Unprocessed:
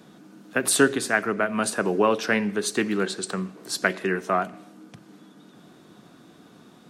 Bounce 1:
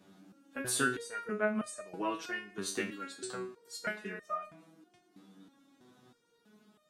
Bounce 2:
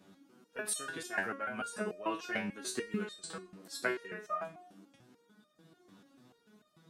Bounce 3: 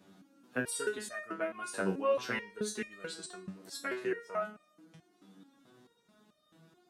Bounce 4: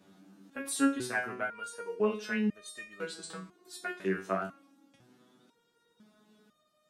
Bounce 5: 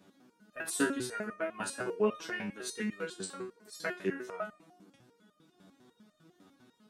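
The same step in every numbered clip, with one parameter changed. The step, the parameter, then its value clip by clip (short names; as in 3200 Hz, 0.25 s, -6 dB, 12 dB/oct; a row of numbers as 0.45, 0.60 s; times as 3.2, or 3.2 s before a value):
stepped resonator, rate: 3.1, 6.8, 4.6, 2, 10 Hz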